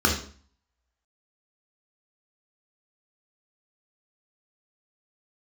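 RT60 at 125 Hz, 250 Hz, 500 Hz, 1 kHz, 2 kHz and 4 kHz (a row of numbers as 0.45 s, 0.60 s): 0.55 s, 0.55 s, 0.45 s, 0.45 s, 0.45 s, 0.45 s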